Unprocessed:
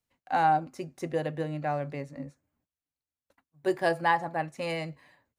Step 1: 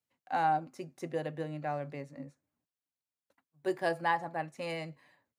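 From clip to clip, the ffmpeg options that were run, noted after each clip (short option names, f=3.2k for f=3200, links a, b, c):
-af "highpass=110,volume=-5dB"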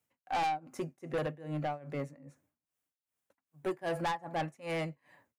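-af "equalizer=f=4.3k:t=o:w=0.72:g=-7.5,tremolo=f=2.5:d=0.93,asoftclip=type=tanh:threshold=-37dB,volume=8.5dB"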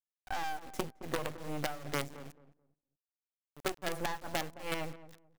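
-filter_complex "[0:a]acrossover=split=110|2400[a][b][c];[a]acompressor=threshold=-58dB:ratio=4[d];[b]acompressor=threshold=-36dB:ratio=4[e];[c]acompressor=threshold=-50dB:ratio=4[f];[d][e][f]amix=inputs=3:normalize=0,acrusher=bits=6:dc=4:mix=0:aa=0.000001,asplit=2[g][h];[h]adelay=217,lowpass=f=980:p=1,volume=-14dB,asplit=2[i][j];[j]adelay=217,lowpass=f=980:p=1,volume=0.24,asplit=2[k][l];[l]adelay=217,lowpass=f=980:p=1,volume=0.24[m];[g][i][k][m]amix=inputs=4:normalize=0,volume=5dB"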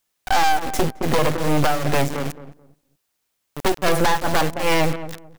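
-af "aeval=exprs='0.126*sin(PI/2*3.16*val(0)/0.126)':c=same,volume=8.5dB"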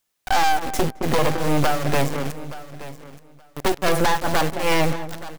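-af "aecho=1:1:874|1748:0.158|0.0238,volume=-1dB"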